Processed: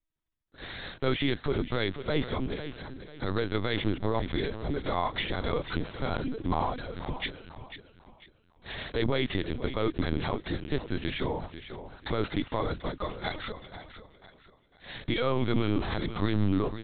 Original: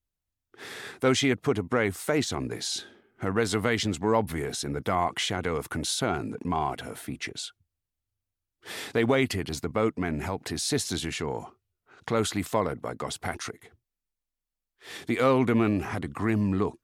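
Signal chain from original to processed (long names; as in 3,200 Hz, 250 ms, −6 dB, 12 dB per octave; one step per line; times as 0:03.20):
dynamic equaliser 290 Hz, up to +3 dB, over −39 dBFS, Q 4.3
brickwall limiter −17.5 dBFS, peak gain reduction 7 dB
on a send: repeating echo 495 ms, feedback 34%, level −11 dB
on the sum: bad sample-rate conversion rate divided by 8×, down filtered, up zero stuff
linear-prediction vocoder at 8 kHz pitch kept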